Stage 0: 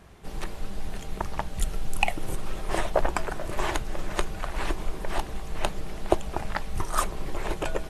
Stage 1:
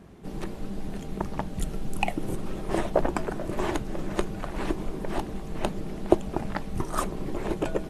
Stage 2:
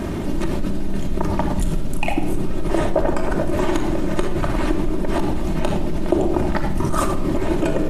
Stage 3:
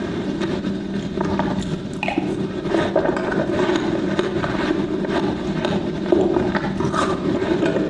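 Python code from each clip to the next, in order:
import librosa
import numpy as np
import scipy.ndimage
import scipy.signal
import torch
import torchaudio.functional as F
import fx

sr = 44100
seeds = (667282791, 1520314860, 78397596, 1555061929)

y1 = fx.peak_eq(x, sr, hz=240.0, db=13.5, octaves=2.2)
y1 = F.gain(torch.from_numpy(y1), -5.0).numpy()
y2 = fx.room_shoebox(y1, sr, seeds[0], volume_m3=3500.0, walls='furnished', distance_m=2.7)
y2 = fx.env_flatten(y2, sr, amount_pct=70)
y2 = F.gain(torch.from_numpy(y2), -2.5).numpy()
y3 = fx.cabinet(y2, sr, low_hz=110.0, low_slope=12, high_hz=7200.0, hz=(200.0, 380.0, 1600.0, 3700.0), db=(4, 4, 7, 9))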